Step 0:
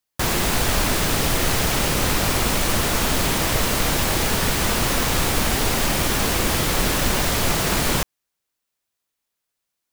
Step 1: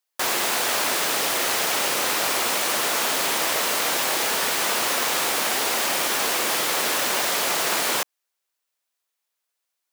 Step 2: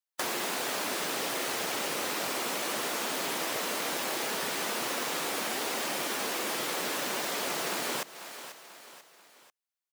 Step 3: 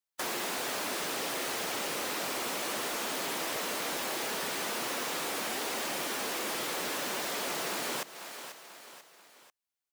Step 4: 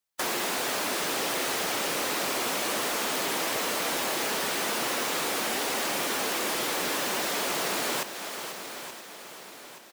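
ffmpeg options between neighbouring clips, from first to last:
-af "highpass=480"
-filter_complex "[0:a]afftdn=nr=13:nf=-35,aecho=1:1:490|980|1470:0.0944|0.0434|0.02,acrossover=split=390|3700[a][b][c];[a]acompressor=threshold=-39dB:ratio=4[d];[b]acompressor=threshold=-35dB:ratio=4[e];[c]acompressor=threshold=-37dB:ratio=4[f];[d][e][f]amix=inputs=3:normalize=0"
-af "asoftclip=type=tanh:threshold=-27.5dB"
-af "aecho=1:1:876|1752|2628|3504|4380:0.251|0.128|0.0653|0.0333|0.017,volume=5dB"

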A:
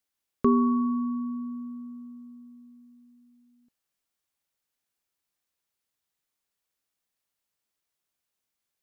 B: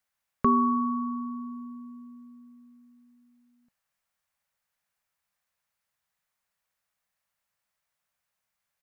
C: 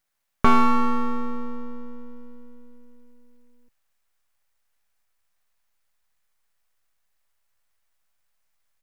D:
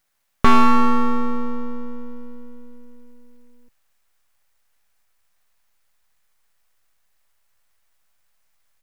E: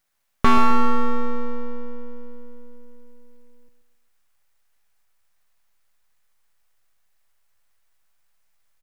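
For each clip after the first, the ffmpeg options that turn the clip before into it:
-af "firequalizer=gain_entry='entry(190,0);entry(320,-14);entry(550,1);entry(1000,3);entry(1800,4);entry(3200,-3)':delay=0.05:min_phase=1,volume=2.5dB"
-af "aeval=exprs='max(val(0),0)':c=same,asubboost=boost=4:cutoff=67,volume=8.5dB"
-af "asoftclip=type=tanh:threshold=-7.5dB,volume=6.5dB"
-filter_complex "[0:a]asplit=2[a][b];[b]adelay=130,lowpass=f=2k:p=1,volume=-10dB,asplit=2[c][d];[d]adelay=130,lowpass=f=2k:p=1,volume=0.43,asplit=2[e][f];[f]adelay=130,lowpass=f=2k:p=1,volume=0.43,asplit=2[g][h];[h]adelay=130,lowpass=f=2k:p=1,volume=0.43,asplit=2[i][j];[j]adelay=130,lowpass=f=2k:p=1,volume=0.43[k];[a][c][e][g][i][k]amix=inputs=6:normalize=0,volume=-2.5dB"

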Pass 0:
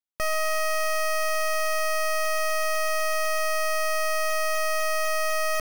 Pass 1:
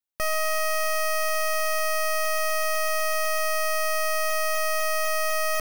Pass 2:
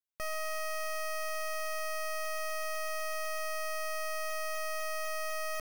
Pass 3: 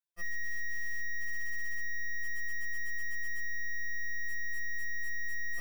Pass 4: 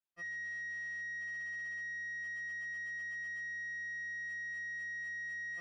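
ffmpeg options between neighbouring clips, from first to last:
-af "highshelf=f=11k:g=5.5"
-af "asoftclip=type=tanh:threshold=-23.5dB,volume=-8.5dB"
-af "afftfilt=real='re*2.83*eq(mod(b,8),0)':imag='im*2.83*eq(mod(b,8),0)':win_size=2048:overlap=0.75"
-af "highpass=110,lowpass=3.7k,volume=-2.5dB"

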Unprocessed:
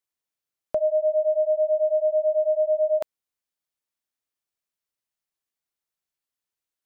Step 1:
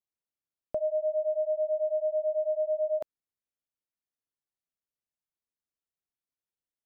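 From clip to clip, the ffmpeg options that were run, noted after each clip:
-af "tiltshelf=f=780:g=5.5,volume=-8dB"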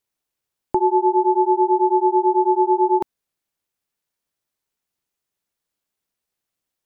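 -af "aeval=exprs='val(0)*sin(2*PI*250*n/s)':c=same,acontrast=41,volume=9dB"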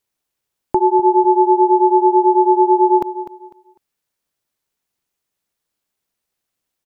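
-af "aecho=1:1:250|500|750:0.224|0.0582|0.0151,volume=3.5dB"

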